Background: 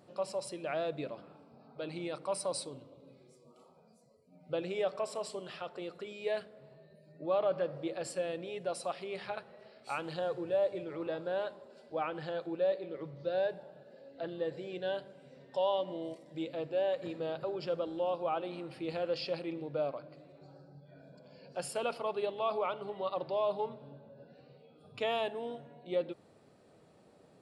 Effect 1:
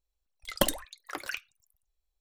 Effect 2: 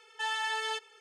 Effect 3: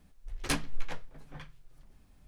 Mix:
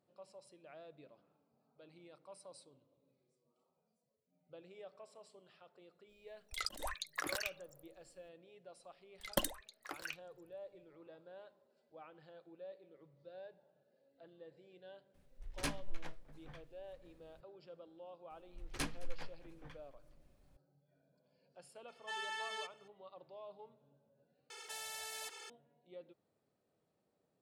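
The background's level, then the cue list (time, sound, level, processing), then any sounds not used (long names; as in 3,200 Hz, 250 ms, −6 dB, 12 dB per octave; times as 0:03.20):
background −20 dB
0:06.09: mix in 1 −2 dB + compressor whose output falls as the input rises −42 dBFS
0:08.76: mix in 1 −9 dB
0:15.14: mix in 3 −8.5 dB
0:18.30: mix in 3 −9 dB + single-tap delay 215 ms −22 dB
0:21.88: mix in 2 −10 dB
0:24.50: overwrite with 2 −11 dB + every bin compressed towards the loudest bin 4 to 1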